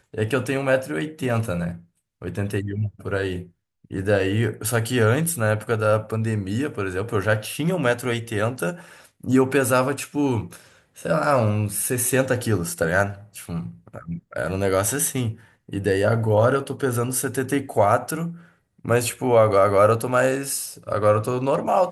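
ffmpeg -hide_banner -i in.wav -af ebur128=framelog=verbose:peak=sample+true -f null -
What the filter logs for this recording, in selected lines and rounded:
Integrated loudness:
  I:         -22.4 LUFS
  Threshold: -32.9 LUFS
Loudness range:
  LRA:         5.3 LU
  Threshold: -43.0 LUFS
  LRA low:   -25.7 LUFS
  LRA high:  -20.5 LUFS
Sample peak:
  Peak:       -4.6 dBFS
True peak:
  Peak:       -4.5 dBFS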